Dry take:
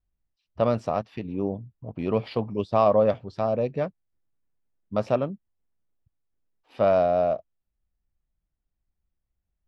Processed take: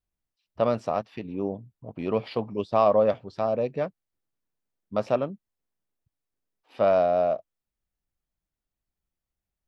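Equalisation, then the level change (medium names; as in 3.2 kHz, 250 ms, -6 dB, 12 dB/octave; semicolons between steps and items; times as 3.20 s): bass shelf 130 Hz -10 dB; 0.0 dB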